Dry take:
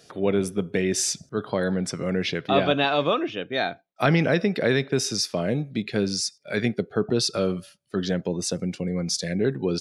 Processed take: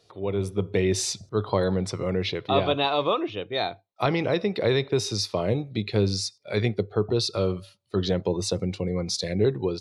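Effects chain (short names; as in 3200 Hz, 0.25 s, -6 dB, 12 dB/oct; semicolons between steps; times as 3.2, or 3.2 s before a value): thirty-one-band EQ 100 Hz +10 dB, 160 Hz -10 dB, 250 Hz -10 dB, 630 Hz -3 dB, 1000 Hz +5 dB, 1600 Hz -10 dB, 4000 Hz +9 dB; AGC gain up to 10 dB; high shelf 2900 Hz -9.5 dB; gain -5.5 dB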